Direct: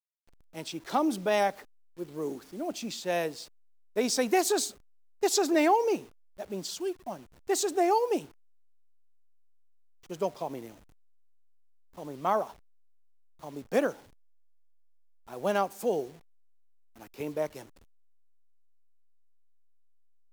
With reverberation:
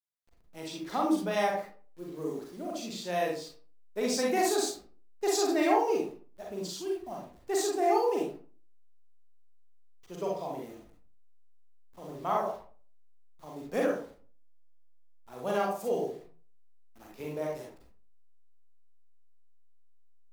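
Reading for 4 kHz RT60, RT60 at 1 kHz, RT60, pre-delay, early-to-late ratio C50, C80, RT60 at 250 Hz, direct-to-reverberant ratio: 0.25 s, 0.40 s, 0.40 s, 36 ms, 2.5 dB, 9.0 dB, 0.45 s, −2.5 dB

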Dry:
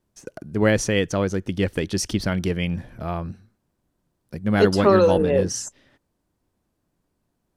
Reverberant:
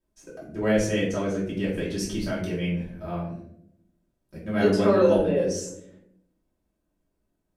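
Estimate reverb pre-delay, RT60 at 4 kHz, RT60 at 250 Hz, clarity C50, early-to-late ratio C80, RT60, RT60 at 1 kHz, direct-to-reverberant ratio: 3 ms, 0.40 s, 1.2 s, 4.5 dB, 8.0 dB, 0.75 s, 0.55 s, −8.5 dB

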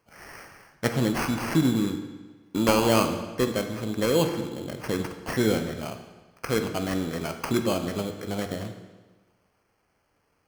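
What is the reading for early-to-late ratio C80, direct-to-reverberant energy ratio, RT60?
9.5 dB, 5.5 dB, 1.3 s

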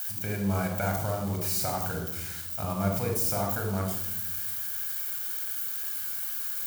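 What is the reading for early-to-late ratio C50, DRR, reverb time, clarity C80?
4.5 dB, 1.5 dB, 0.95 s, 7.5 dB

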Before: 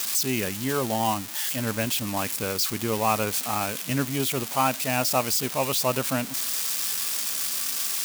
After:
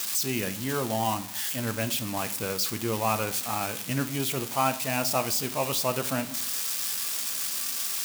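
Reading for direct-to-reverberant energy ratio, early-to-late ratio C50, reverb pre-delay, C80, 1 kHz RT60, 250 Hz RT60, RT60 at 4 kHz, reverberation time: 9.5 dB, 16.5 dB, 6 ms, 19.5 dB, 0.65 s, 0.75 s, 0.45 s, 0.60 s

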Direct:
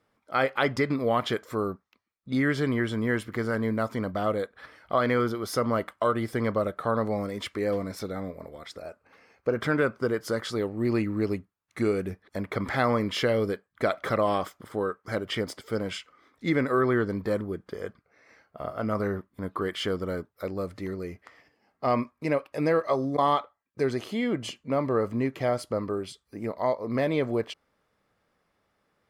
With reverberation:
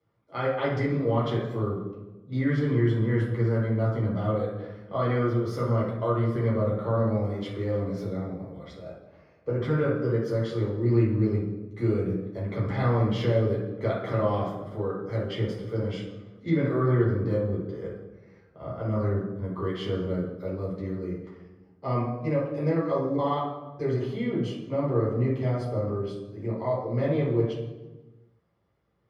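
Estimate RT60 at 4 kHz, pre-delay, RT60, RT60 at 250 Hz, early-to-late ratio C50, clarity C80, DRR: 0.80 s, 3 ms, 1.2 s, 1.6 s, 2.0 dB, 6.0 dB, −7.0 dB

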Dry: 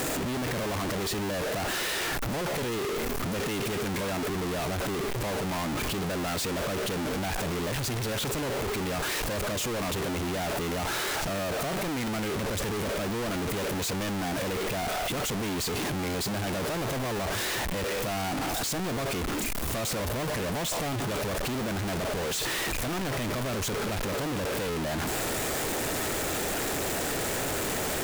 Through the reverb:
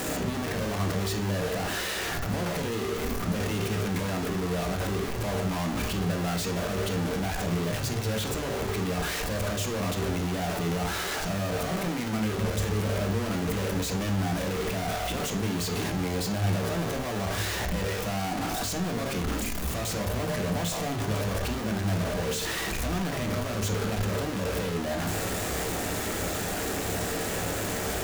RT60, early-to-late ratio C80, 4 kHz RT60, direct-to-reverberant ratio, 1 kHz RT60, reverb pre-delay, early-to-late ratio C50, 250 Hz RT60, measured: 0.45 s, 15.5 dB, 0.40 s, 3.5 dB, 0.50 s, 3 ms, 10.5 dB, 0.50 s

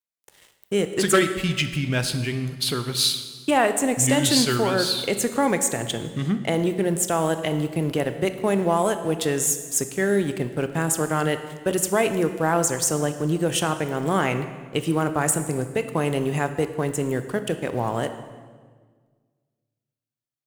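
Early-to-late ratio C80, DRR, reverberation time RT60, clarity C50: 11.5 dB, 9.0 dB, 1.6 s, 10.5 dB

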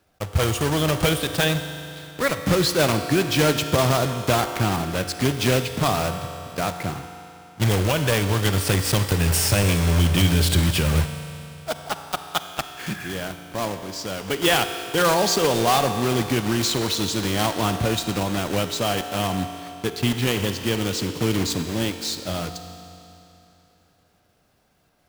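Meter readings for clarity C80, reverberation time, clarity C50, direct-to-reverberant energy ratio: 9.0 dB, 3.0 s, 8.5 dB, 8.0 dB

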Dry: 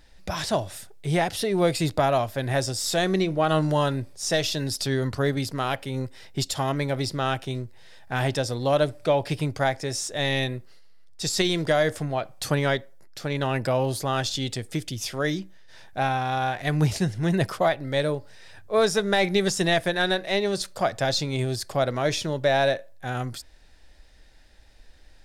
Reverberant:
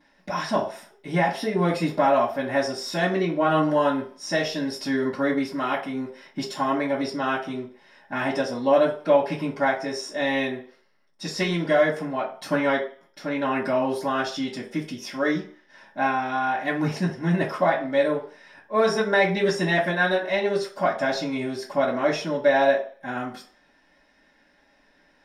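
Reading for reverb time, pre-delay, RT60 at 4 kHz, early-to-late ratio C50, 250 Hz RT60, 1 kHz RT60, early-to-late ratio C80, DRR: 0.45 s, 3 ms, 0.45 s, 9.0 dB, 0.40 s, 0.50 s, 13.5 dB, −14.5 dB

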